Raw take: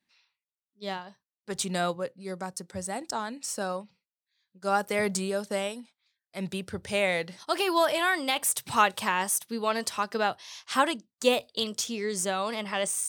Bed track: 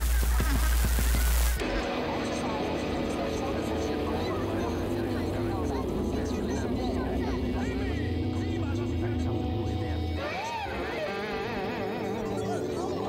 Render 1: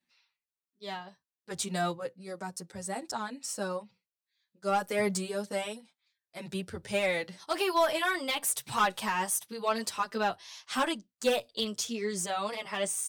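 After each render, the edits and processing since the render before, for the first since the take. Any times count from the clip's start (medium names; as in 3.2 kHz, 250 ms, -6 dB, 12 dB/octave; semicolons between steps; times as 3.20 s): hard clipper -17.5 dBFS, distortion -16 dB; endless flanger 8.4 ms -2.7 Hz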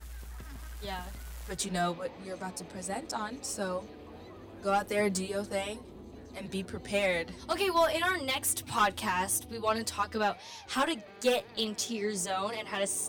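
add bed track -18.5 dB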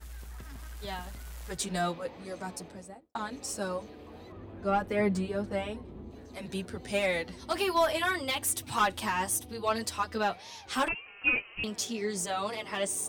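2.53–3.15 s: studio fade out; 4.32–6.11 s: tone controls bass +6 dB, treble -14 dB; 10.88–11.64 s: frequency inversion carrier 3 kHz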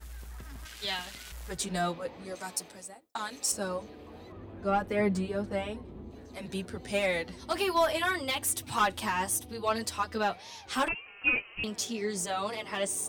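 0.65–1.32 s: frequency weighting D; 2.35–3.52 s: tilt EQ +3 dB/octave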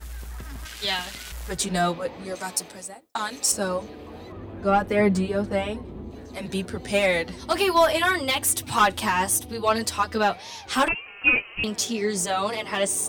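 trim +7.5 dB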